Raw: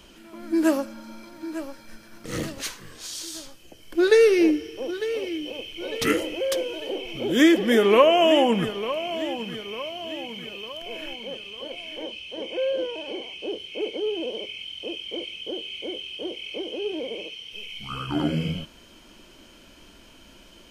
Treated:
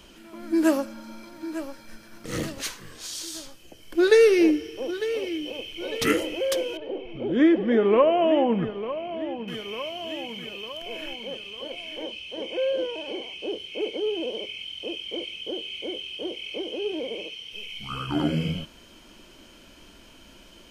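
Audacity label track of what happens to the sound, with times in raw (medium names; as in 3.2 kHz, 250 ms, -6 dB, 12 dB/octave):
6.770000	9.480000	tape spacing loss at 10 kHz 41 dB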